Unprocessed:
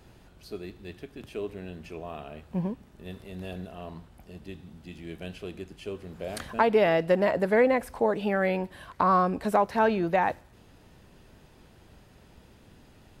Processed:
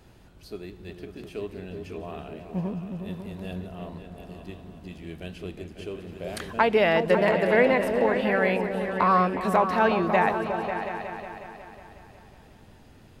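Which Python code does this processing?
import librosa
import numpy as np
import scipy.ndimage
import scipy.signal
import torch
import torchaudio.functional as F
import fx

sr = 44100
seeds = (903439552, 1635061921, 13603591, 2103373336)

y = fx.dynamic_eq(x, sr, hz=2500.0, q=0.86, threshold_db=-43.0, ratio=4.0, max_db=6)
y = fx.echo_opening(y, sr, ms=182, hz=200, octaves=2, feedback_pct=70, wet_db=-3)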